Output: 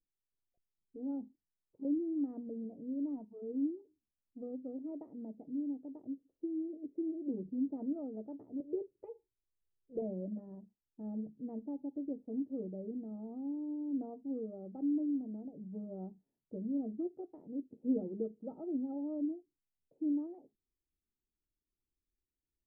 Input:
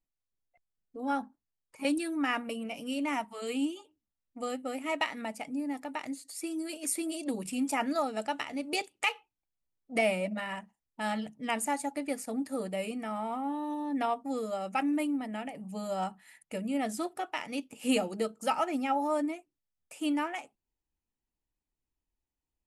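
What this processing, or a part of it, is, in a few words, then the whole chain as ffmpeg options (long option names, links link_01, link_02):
under water: -filter_complex "[0:a]lowpass=frequency=430:width=0.5412,lowpass=frequency=430:width=1.3066,equalizer=frequency=380:width_type=o:width=0.46:gain=5,asettb=1/sr,asplit=3[link_01][link_02][link_03];[link_01]atrim=end=8.604[link_04];[link_02]atrim=start=8.6:end=10.02,asetpts=PTS-STARTPTS,afade=type=in:duration=0.004:curve=qsin,afade=type=out:start_time=1.416:duration=0.004:curve=qsin,aecho=1:1:2:0.73,atrim=end_sample=62622[link_05];[link_03]atrim=start=10.016[link_06];[link_04][link_05]acrossfade=duration=0.004:curve1=hsin:curve2=qsin[link_07];[link_07][link_06]acrossfade=duration=0.004:curve1=qsin:curve2=hsin,volume=-4dB"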